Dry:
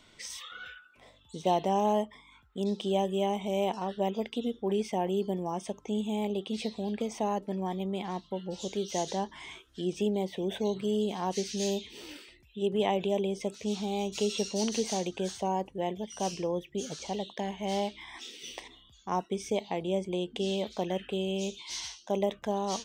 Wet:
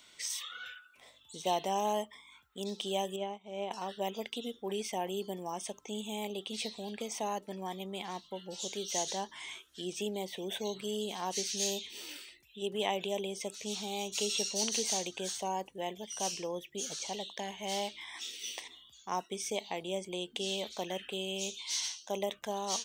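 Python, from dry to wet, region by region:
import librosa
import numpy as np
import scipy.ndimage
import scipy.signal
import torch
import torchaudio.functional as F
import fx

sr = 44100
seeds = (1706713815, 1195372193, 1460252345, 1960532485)

y = fx.chain(x, sr, fx.spacing_loss(db_at_10k=22),
    fx.upward_expand(threshold_db=-40.0, expansion=2.5), at=(3.16, 3.71))
y = fx.tilt_eq(y, sr, slope=3.0)
y = fx.notch(y, sr, hz=5000.0, q=24.0)
y = y * librosa.db_to_amplitude(-3.0)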